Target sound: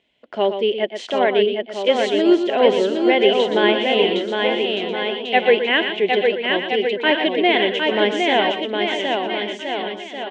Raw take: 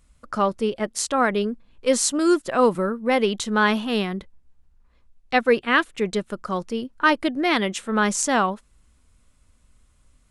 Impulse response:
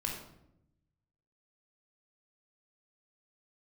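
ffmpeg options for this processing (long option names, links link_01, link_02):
-filter_complex "[0:a]equalizer=frequency=1200:width=6.1:gain=-13,asplit=2[link_01][link_02];[link_02]aecho=0:1:760|1368|1854|2244|2555:0.631|0.398|0.251|0.158|0.1[link_03];[link_01][link_03]amix=inputs=2:normalize=0,aexciter=amount=1.1:drive=7.8:freq=2600,highpass=280,equalizer=frequency=390:width_type=q:width=4:gain=9,equalizer=frequency=670:width_type=q:width=4:gain=8,equalizer=frequency=1300:width_type=q:width=4:gain=-9,equalizer=frequency=2000:width_type=q:width=4:gain=6,equalizer=frequency=3100:width_type=q:width=4:gain=8,lowpass=frequency=3800:width=0.5412,lowpass=frequency=3800:width=1.3066,asplit=2[link_04][link_05];[link_05]aecho=0:1:119:0.355[link_06];[link_04][link_06]amix=inputs=2:normalize=0,acrossover=split=2700[link_07][link_08];[link_08]acompressor=threshold=-25dB:ratio=4:attack=1:release=60[link_09];[link_07][link_09]amix=inputs=2:normalize=0"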